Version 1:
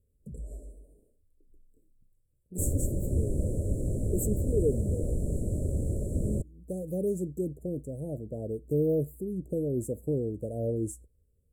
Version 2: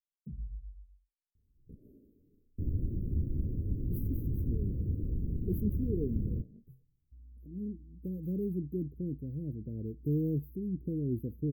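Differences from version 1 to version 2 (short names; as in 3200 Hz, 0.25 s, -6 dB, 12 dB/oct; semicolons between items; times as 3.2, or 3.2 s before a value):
speech: entry +1.35 s; second sound -3.5 dB; master: add inverse Chebyshev band-stop 1000–7300 Hz, stop band 60 dB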